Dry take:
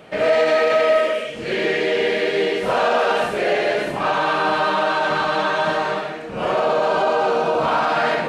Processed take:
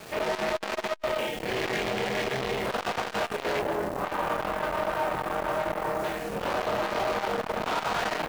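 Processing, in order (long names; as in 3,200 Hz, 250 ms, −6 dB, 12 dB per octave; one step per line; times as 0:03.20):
0:03.59–0:06.04: low-pass filter 1,000 Hz 12 dB per octave
bit reduction 7 bits
gain into a clipping stage and back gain 23 dB
amplitude modulation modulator 270 Hz, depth 70%
double-tracking delay 24 ms −4.5 dB
saturating transformer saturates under 490 Hz
level +2 dB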